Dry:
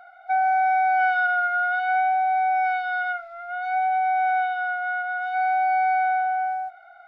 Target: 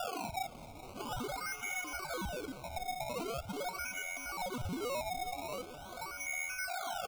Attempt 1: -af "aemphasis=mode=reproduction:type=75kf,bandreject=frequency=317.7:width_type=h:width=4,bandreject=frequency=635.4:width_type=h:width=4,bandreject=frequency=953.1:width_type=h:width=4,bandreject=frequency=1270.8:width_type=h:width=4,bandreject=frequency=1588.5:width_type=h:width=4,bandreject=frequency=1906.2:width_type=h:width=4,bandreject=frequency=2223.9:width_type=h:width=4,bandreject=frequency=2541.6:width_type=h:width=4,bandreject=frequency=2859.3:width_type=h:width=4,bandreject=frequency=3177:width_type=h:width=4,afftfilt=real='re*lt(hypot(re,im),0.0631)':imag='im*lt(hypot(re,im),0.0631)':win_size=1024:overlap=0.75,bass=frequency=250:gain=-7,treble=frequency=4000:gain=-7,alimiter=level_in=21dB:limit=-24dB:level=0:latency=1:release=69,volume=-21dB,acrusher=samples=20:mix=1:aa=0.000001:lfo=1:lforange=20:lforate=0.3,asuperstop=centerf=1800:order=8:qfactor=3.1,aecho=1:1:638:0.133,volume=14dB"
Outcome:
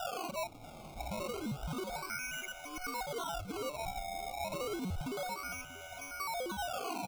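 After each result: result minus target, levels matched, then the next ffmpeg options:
echo 218 ms late; sample-and-hold swept by an LFO: distortion +4 dB
-af "aemphasis=mode=reproduction:type=75kf,bandreject=frequency=317.7:width_type=h:width=4,bandreject=frequency=635.4:width_type=h:width=4,bandreject=frequency=953.1:width_type=h:width=4,bandreject=frequency=1270.8:width_type=h:width=4,bandreject=frequency=1588.5:width_type=h:width=4,bandreject=frequency=1906.2:width_type=h:width=4,bandreject=frequency=2223.9:width_type=h:width=4,bandreject=frequency=2541.6:width_type=h:width=4,bandreject=frequency=2859.3:width_type=h:width=4,bandreject=frequency=3177:width_type=h:width=4,afftfilt=real='re*lt(hypot(re,im),0.0631)':imag='im*lt(hypot(re,im),0.0631)':win_size=1024:overlap=0.75,bass=frequency=250:gain=-7,treble=frequency=4000:gain=-7,alimiter=level_in=21dB:limit=-24dB:level=0:latency=1:release=69,volume=-21dB,acrusher=samples=20:mix=1:aa=0.000001:lfo=1:lforange=20:lforate=0.3,asuperstop=centerf=1800:order=8:qfactor=3.1,aecho=1:1:420:0.133,volume=14dB"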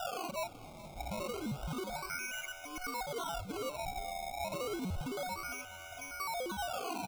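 sample-and-hold swept by an LFO: distortion +4 dB
-af "aemphasis=mode=reproduction:type=75kf,bandreject=frequency=317.7:width_type=h:width=4,bandreject=frequency=635.4:width_type=h:width=4,bandreject=frequency=953.1:width_type=h:width=4,bandreject=frequency=1270.8:width_type=h:width=4,bandreject=frequency=1588.5:width_type=h:width=4,bandreject=frequency=1906.2:width_type=h:width=4,bandreject=frequency=2223.9:width_type=h:width=4,bandreject=frequency=2541.6:width_type=h:width=4,bandreject=frequency=2859.3:width_type=h:width=4,bandreject=frequency=3177:width_type=h:width=4,afftfilt=real='re*lt(hypot(re,im),0.0631)':imag='im*lt(hypot(re,im),0.0631)':win_size=1024:overlap=0.75,bass=frequency=250:gain=-7,treble=frequency=4000:gain=-7,alimiter=level_in=21dB:limit=-24dB:level=0:latency=1:release=69,volume=-21dB,acrusher=samples=20:mix=1:aa=0.000001:lfo=1:lforange=20:lforate=0.43,asuperstop=centerf=1800:order=8:qfactor=3.1,aecho=1:1:420:0.133,volume=14dB"

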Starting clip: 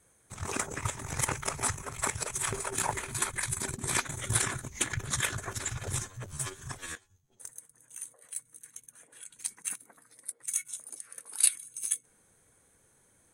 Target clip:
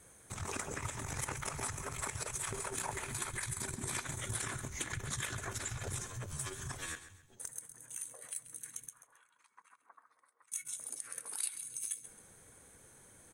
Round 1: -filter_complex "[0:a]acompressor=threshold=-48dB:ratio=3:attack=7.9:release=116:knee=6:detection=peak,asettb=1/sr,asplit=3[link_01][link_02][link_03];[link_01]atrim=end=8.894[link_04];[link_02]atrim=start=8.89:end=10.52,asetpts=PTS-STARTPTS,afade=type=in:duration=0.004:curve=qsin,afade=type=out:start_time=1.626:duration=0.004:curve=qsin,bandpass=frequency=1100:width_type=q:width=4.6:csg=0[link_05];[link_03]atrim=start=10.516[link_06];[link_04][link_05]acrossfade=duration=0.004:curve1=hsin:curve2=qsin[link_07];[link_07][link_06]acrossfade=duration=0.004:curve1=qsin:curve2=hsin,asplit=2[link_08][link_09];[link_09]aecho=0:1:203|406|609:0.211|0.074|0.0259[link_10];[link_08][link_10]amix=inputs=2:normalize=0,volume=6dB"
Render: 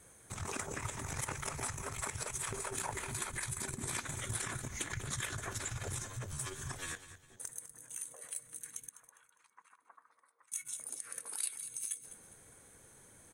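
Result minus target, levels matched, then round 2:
echo 69 ms late
-filter_complex "[0:a]acompressor=threshold=-48dB:ratio=3:attack=7.9:release=116:knee=6:detection=peak,asettb=1/sr,asplit=3[link_01][link_02][link_03];[link_01]atrim=end=8.894[link_04];[link_02]atrim=start=8.89:end=10.52,asetpts=PTS-STARTPTS,afade=type=in:duration=0.004:curve=qsin,afade=type=out:start_time=1.626:duration=0.004:curve=qsin,bandpass=frequency=1100:width_type=q:width=4.6:csg=0[link_05];[link_03]atrim=start=10.516[link_06];[link_04][link_05]acrossfade=duration=0.004:curve1=hsin:curve2=qsin[link_07];[link_07][link_06]acrossfade=duration=0.004:curve1=qsin:curve2=hsin,asplit=2[link_08][link_09];[link_09]aecho=0:1:134|268|402:0.211|0.074|0.0259[link_10];[link_08][link_10]amix=inputs=2:normalize=0,volume=6dB"

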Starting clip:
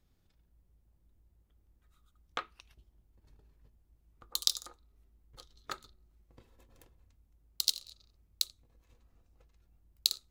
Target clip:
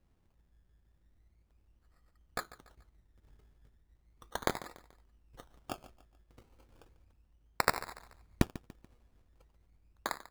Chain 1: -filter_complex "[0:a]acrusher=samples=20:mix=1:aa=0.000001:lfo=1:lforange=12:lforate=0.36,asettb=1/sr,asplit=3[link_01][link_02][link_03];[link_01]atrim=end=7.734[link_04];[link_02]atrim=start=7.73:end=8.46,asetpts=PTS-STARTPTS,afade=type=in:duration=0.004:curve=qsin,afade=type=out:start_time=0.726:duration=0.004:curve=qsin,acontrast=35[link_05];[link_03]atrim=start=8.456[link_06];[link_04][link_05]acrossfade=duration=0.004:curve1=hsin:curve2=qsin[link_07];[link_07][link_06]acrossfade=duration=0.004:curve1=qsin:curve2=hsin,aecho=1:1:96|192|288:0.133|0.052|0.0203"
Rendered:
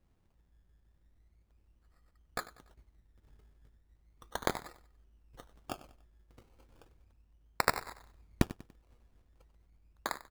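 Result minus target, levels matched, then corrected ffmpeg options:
echo 48 ms early
-filter_complex "[0:a]acrusher=samples=20:mix=1:aa=0.000001:lfo=1:lforange=12:lforate=0.36,asettb=1/sr,asplit=3[link_01][link_02][link_03];[link_01]atrim=end=7.734[link_04];[link_02]atrim=start=7.73:end=8.46,asetpts=PTS-STARTPTS,afade=type=in:duration=0.004:curve=qsin,afade=type=out:start_time=0.726:duration=0.004:curve=qsin,acontrast=35[link_05];[link_03]atrim=start=8.456[link_06];[link_04][link_05]acrossfade=duration=0.004:curve1=hsin:curve2=qsin[link_07];[link_07][link_06]acrossfade=duration=0.004:curve1=qsin:curve2=hsin,aecho=1:1:144|288|432:0.133|0.052|0.0203"

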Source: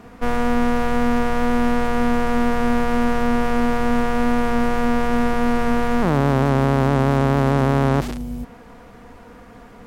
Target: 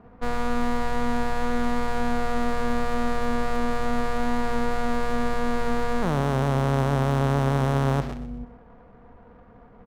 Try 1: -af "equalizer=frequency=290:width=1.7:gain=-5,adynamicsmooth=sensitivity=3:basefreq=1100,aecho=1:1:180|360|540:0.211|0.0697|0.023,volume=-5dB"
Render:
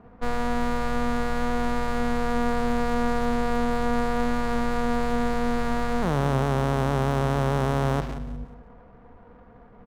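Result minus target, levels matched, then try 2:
echo 56 ms late
-af "equalizer=frequency=290:width=1.7:gain=-5,adynamicsmooth=sensitivity=3:basefreq=1100,aecho=1:1:124|248|372:0.211|0.0697|0.023,volume=-5dB"

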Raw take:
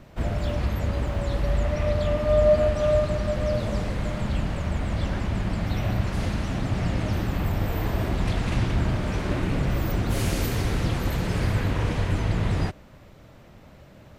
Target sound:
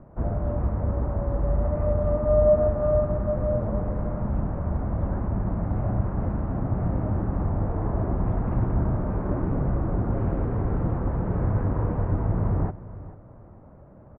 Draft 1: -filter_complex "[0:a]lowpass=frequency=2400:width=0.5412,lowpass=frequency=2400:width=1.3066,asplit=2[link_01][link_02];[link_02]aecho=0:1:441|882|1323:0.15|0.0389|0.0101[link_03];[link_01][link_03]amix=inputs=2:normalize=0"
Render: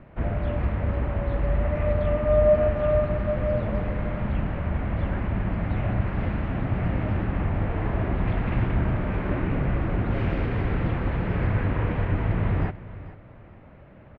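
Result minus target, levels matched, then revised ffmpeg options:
2,000 Hz band +11.5 dB
-filter_complex "[0:a]lowpass=frequency=1200:width=0.5412,lowpass=frequency=1200:width=1.3066,asplit=2[link_01][link_02];[link_02]aecho=0:1:441|882|1323:0.15|0.0389|0.0101[link_03];[link_01][link_03]amix=inputs=2:normalize=0"

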